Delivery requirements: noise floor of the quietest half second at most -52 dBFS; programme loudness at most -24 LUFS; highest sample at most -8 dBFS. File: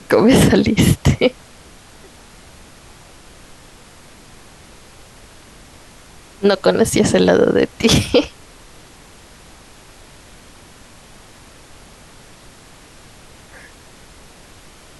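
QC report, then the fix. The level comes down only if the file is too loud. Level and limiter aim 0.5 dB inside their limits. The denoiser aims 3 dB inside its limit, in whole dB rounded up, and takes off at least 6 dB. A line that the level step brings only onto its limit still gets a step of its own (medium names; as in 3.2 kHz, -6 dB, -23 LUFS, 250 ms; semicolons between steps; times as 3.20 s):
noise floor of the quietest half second -43 dBFS: fail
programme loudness -14.5 LUFS: fail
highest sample -2.5 dBFS: fail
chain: trim -10 dB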